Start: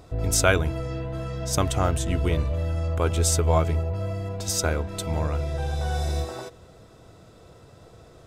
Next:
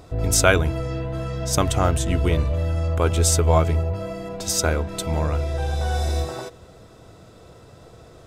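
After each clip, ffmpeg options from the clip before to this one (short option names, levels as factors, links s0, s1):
-af "bandreject=f=48.99:t=h:w=4,bandreject=f=97.98:t=h:w=4,bandreject=f=146.97:t=h:w=4,volume=1.5"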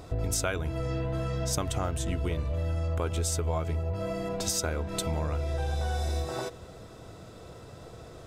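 -af "acompressor=threshold=0.0447:ratio=6"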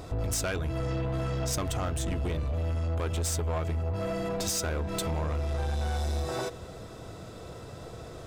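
-af "asoftclip=type=tanh:threshold=0.0355,volume=1.5"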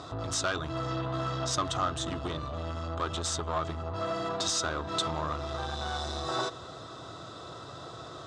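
-af "highpass=140,equalizer=f=200:t=q:w=4:g=-10,equalizer=f=470:t=q:w=4:g=-7,equalizer=f=1200:t=q:w=4:g=10,equalizer=f=2300:t=q:w=4:g=-8,equalizer=f=3700:t=q:w=4:g=8,lowpass=f=7400:w=0.5412,lowpass=f=7400:w=1.3066,volume=1.19"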